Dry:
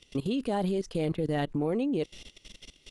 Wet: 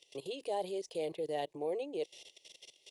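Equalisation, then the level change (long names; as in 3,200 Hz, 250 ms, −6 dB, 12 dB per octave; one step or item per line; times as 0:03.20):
high-pass filter 330 Hz 12 dB per octave
phaser with its sweep stopped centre 570 Hz, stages 4
−2.5 dB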